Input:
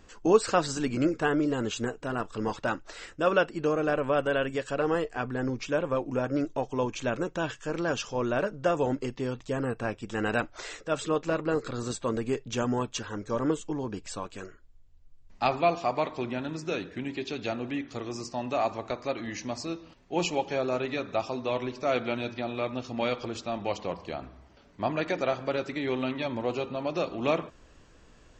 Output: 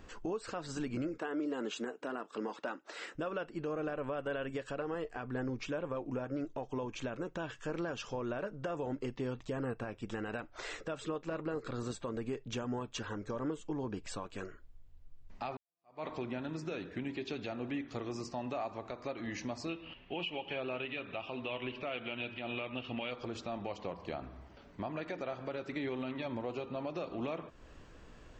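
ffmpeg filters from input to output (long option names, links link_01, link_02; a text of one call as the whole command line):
ffmpeg -i in.wav -filter_complex "[0:a]asettb=1/sr,asplit=3[link_01][link_02][link_03];[link_01]atrim=end=1.184[link_04];[link_02]atrim=start=1.18:end=3.15,asetpts=PTS-STARTPTS,afade=type=in:duration=0.004:curve=qsin,afade=type=out:start_time=1.966:duration=0.004:curve=qsin,highpass=frequency=230:width=0.5412,highpass=frequency=230:width=1.3066[link_05];[link_03]atrim=start=3.146[link_06];[link_04][link_05]acrossfade=duration=0.004:curve1=hsin:curve2=qsin[link_07];[link_07][link_06]acrossfade=duration=0.004:curve1=qsin:curve2=hsin,asettb=1/sr,asplit=3[link_08][link_09][link_10];[link_08]atrim=end=19.694[link_11];[link_09]atrim=start=19.69:end=23.11,asetpts=PTS-STARTPTS,afade=type=in:duration=0.004:curve=qsin,afade=type=out:start_time=3.416:duration=0.004:curve=qsin,lowpass=frequency=2900:width_type=q:width=7.7[link_12];[link_10]atrim=start=23.106[link_13];[link_11][link_12]acrossfade=duration=0.004:curve1=hsin:curve2=qsin[link_14];[link_14][link_13]acrossfade=duration=0.004:curve1=qsin:curve2=hsin,asplit=2[link_15][link_16];[link_15]atrim=end=15.57,asetpts=PTS-STARTPTS,afade=type=out:start_time=15.566:duration=0.004:curve=hsin[link_17];[link_16]atrim=start=15.57,asetpts=PTS-STARTPTS,afade=type=in:duration=0.51:curve=exp[link_18];[link_17][link_18]concat=n=2:v=0:a=1,equalizer=frequency=6900:width=0.76:gain=-6.5,acompressor=threshold=-41dB:ratio=2,alimiter=level_in=5.5dB:limit=-24dB:level=0:latency=1:release=121,volume=-5.5dB,volume=1.5dB" out.wav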